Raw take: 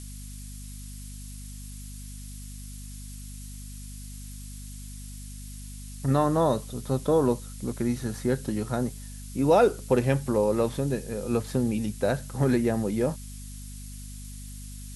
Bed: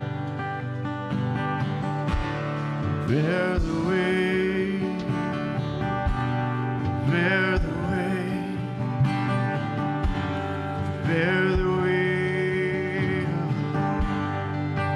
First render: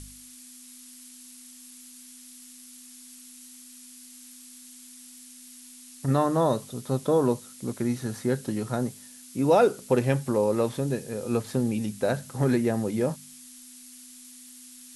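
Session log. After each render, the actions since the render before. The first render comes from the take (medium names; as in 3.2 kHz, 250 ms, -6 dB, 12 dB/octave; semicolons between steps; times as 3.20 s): de-hum 50 Hz, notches 4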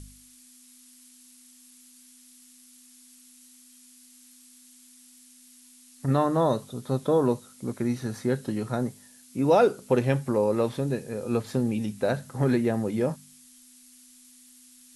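noise print and reduce 6 dB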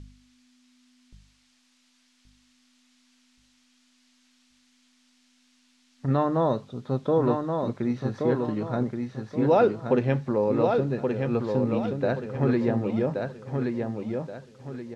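distance through air 180 m; on a send: feedback delay 1126 ms, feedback 34%, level -4.5 dB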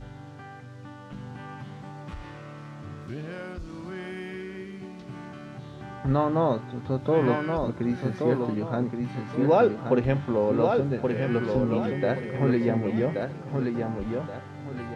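add bed -13.5 dB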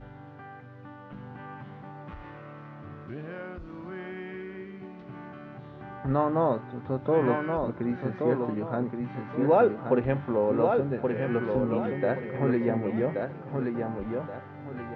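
low-pass 2.1 kHz 12 dB/octave; bass shelf 210 Hz -6 dB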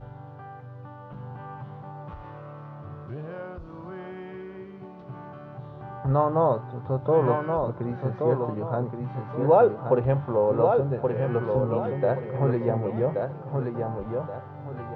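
ten-band graphic EQ 125 Hz +8 dB, 250 Hz -7 dB, 500 Hz +4 dB, 1 kHz +5 dB, 2 kHz -8 dB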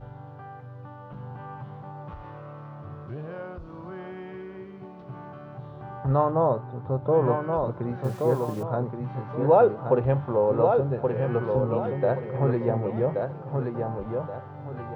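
6.31–7.53 s: treble shelf 2 kHz -7.5 dB; 8.04–8.63 s: word length cut 8-bit, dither none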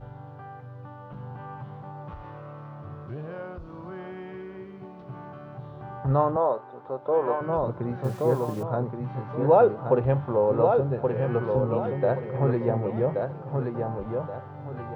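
6.36–7.41 s: high-pass 410 Hz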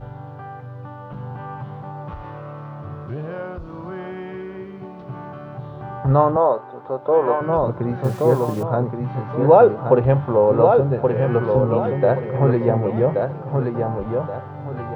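trim +7 dB; peak limiter -2 dBFS, peak gain reduction 1 dB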